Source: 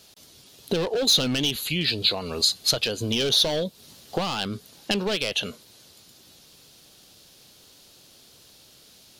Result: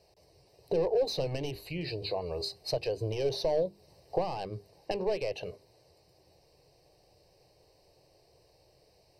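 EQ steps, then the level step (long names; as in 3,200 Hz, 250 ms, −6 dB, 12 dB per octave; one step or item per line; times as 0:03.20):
moving average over 13 samples
mains-hum notches 50/100/150/200/250/300/350/400 Hz
phaser with its sweep stopped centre 570 Hz, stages 4
0.0 dB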